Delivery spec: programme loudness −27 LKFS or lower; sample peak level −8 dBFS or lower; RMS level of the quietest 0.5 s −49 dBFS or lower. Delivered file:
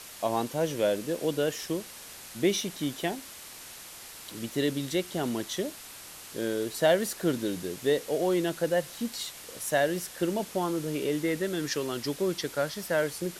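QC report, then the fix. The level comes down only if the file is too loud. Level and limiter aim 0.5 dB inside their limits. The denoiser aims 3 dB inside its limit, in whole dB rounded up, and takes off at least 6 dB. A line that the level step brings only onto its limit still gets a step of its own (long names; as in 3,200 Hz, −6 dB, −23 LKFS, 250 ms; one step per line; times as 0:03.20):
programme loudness −30.0 LKFS: in spec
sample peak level −12.0 dBFS: in spec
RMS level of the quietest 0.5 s −46 dBFS: out of spec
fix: broadband denoise 6 dB, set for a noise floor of −46 dBFS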